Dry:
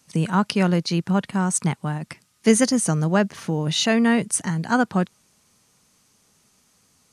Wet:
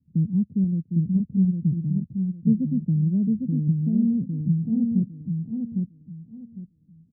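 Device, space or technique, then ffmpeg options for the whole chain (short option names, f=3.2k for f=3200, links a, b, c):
the neighbour's flat through the wall: -filter_complex "[0:a]asettb=1/sr,asplit=3[a][b][c];[a]atrim=end=0.644[d];[b]atrim=start=0.64:end=1.16,asetpts=PTS-STARTPTS,afade=t=in:d=0.004:c=qsin,afade=t=out:st=0.516:d=0.004:c=qsin,lowshelf=f=460:g=-4.5[e];[c]atrim=start=1.156[f];[d][e]acrossfade=d=0.004:c1=hsin:c2=qsin[g];[g][f]acrossfade=d=0.004:c1=qsin:c2=hsin,lowpass=f=230:w=0.5412,lowpass=f=230:w=1.3066,equalizer=f=82:t=o:w=0.83:g=6,asplit=2[h][i];[i]adelay=805,lowpass=f=4.4k:p=1,volume=-3.5dB,asplit=2[j][k];[k]adelay=805,lowpass=f=4.4k:p=1,volume=0.25,asplit=2[l][m];[m]adelay=805,lowpass=f=4.4k:p=1,volume=0.25,asplit=2[n][o];[o]adelay=805,lowpass=f=4.4k:p=1,volume=0.25[p];[h][j][l][n][p]amix=inputs=5:normalize=0"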